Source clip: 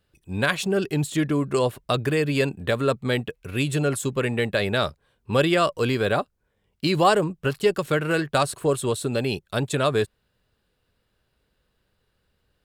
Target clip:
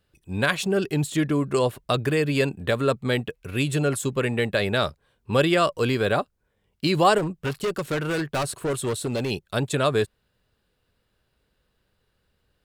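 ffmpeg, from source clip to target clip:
-filter_complex "[0:a]asettb=1/sr,asplit=3[s0][s1][s2];[s0]atrim=end=7.184[s3];[s1]atrim=start=7.18:end=9.31,asetpts=PTS-STARTPTS,afade=t=in:d=0.004:c=qsin,afade=t=out:st=2.126:d=0.004:c=qsin,volume=12.6,asoftclip=hard,volume=0.0794[s4];[s2]atrim=start=9.306[s5];[s3][s4]acrossfade=d=0.004:c1=hsin:c2=qsin[s6];[s6][s5]acrossfade=d=0.004:c1=qsin:c2=hsin"

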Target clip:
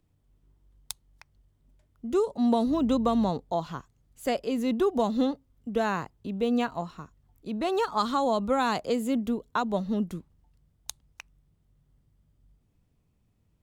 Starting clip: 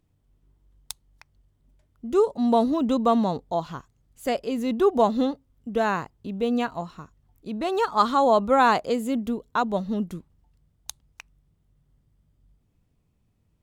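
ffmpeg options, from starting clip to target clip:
-filter_complex "[0:a]acrossover=split=260|3000[s0][s1][s2];[s1]acompressor=threshold=0.0794:ratio=6[s3];[s0][s3][s2]amix=inputs=3:normalize=0,asettb=1/sr,asplit=3[s4][s5][s6];[s4]atrim=end=2.674[s7];[s5]atrim=start=2.67:end=3.3,asetpts=PTS-STARTPTS,afade=t=in:d=0.004:c=qsin,afade=t=out:st=0.626:d=0.004:c=qsin,aeval=exprs='val(0)+0.00891*(sin(2*PI*50*n/s)+sin(2*PI*2*50*n/s)/2+sin(2*PI*3*50*n/s)/3+sin(2*PI*4*50*n/s)/4+sin(2*PI*5*50*n/s)/5)':c=same[s8];[s6]atrim=start=3.296[s9];[s7][s8]acrossfade=d=0.004:c1=hsin:c2=qsin[s10];[s10][s9]acrossfade=d=0.004:c1=qsin:c2=hsin,volume=0.891"

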